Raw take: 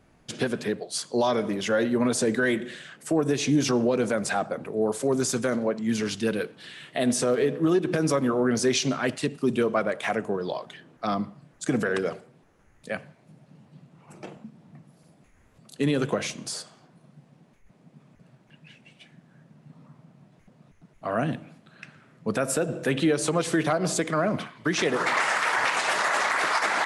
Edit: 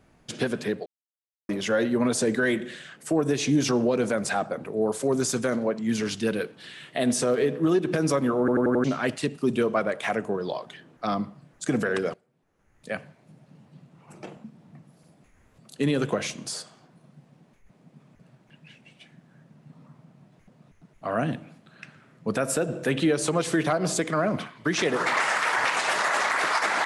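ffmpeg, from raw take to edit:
-filter_complex "[0:a]asplit=9[a][b][c][d][e][f][g][h][i];[a]atrim=end=0.86,asetpts=PTS-STARTPTS,afade=t=out:st=0.856:d=0.004:c=hsin[j];[b]atrim=start=0.86:end=1.49,asetpts=PTS-STARTPTS,volume=0[k];[c]atrim=start=1.49:end=8.482,asetpts=PTS-STARTPTS,afade=t=in:d=0.004:c=hsin[l];[d]atrim=start=8.388:end=8.482[m];[e]atrim=start=8.388:end=8.482[n];[f]atrim=start=8.388:end=8.482[o];[g]atrim=start=8.388:end=8.482[p];[h]atrim=start=8.838:end=12.14,asetpts=PTS-STARTPTS,afade=t=out:st=3.298:d=0.004:c=hsin:silence=0.125893[q];[i]atrim=start=12.14,asetpts=PTS-STARTPTS,afade=t=in:d=0.77:c=qua:silence=0.125893[r];[j][k][l]concat=n=3:v=0:a=1[s];[s][m]acrossfade=d=0.004:c1=hsin:c2=hsin[t];[t][n]acrossfade=d=0.004:c1=hsin:c2=hsin[u];[u][o]acrossfade=d=0.004:c1=hsin:c2=hsin[v];[v][p]acrossfade=d=0.004:c1=hsin:c2=hsin[w];[q][r]concat=n=2:v=0:a=1[x];[w][x]acrossfade=d=0.004:c1=hsin:c2=hsin"

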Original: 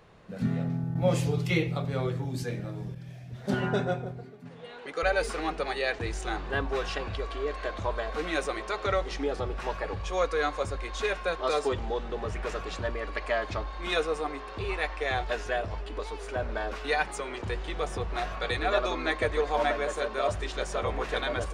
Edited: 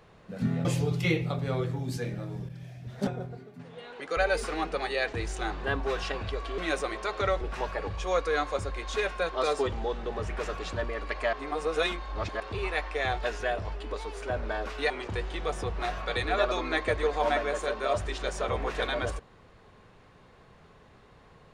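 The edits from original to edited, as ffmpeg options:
-filter_complex "[0:a]asplit=8[a][b][c][d][e][f][g][h];[a]atrim=end=0.652[i];[b]atrim=start=1.108:end=3.532[j];[c]atrim=start=3.928:end=7.442[k];[d]atrim=start=8.228:end=9.062[l];[e]atrim=start=9.468:end=13.392[m];[f]atrim=start=13.388:end=14.462,asetpts=PTS-STARTPTS,areverse[n];[g]atrim=start=14.458:end=16.962[o];[h]atrim=start=17.238[p];[i][j]acrossfade=d=0.004:c1=hsin:c2=hsin[q];[q][k]acrossfade=d=0.004:c1=hsin:c2=hsin[r];[r][l]acrossfade=d=0.004:c1=hsin:c2=hsin[s];[s][m]acrossfade=d=0.004:c1=hsin:c2=hsin[t];[t][n]acrossfade=d=0.004:c1=hsin:c2=hsin[u];[u][o]acrossfade=d=0.004:c1=hsin:c2=hsin[v];[v][p]acrossfade=d=0.004:c1=hsin:c2=hsin"

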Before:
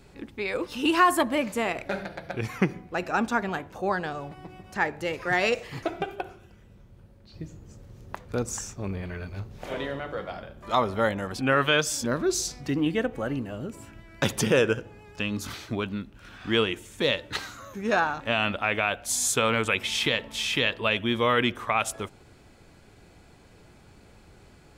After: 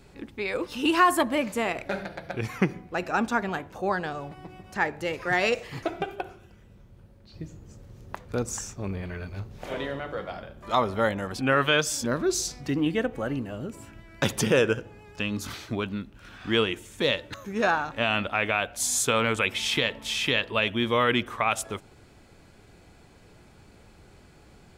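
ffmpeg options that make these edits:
-filter_complex "[0:a]asplit=2[a][b];[a]atrim=end=17.342[c];[b]atrim=start=17.628[d];[c][d]acrossfade=d=0.004:c1=hsin:c2=hsin"

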